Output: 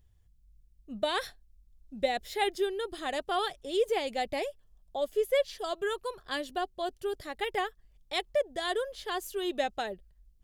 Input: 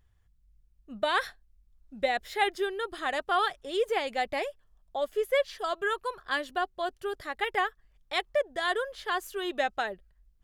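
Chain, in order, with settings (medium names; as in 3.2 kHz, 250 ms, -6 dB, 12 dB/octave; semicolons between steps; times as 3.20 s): peaking EQ 1.4 kHz -10.5 dB 1.7 oct; trim +2.5 dB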